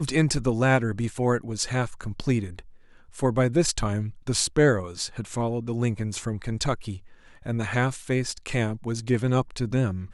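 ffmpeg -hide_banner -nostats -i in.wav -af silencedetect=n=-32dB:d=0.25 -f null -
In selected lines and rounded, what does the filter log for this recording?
silence_start: 2.59
silence_end: 3.17 | silence_duration: 0.58
silence_start: 6.96
silence_end: 7.46 | silence_duration: 0.49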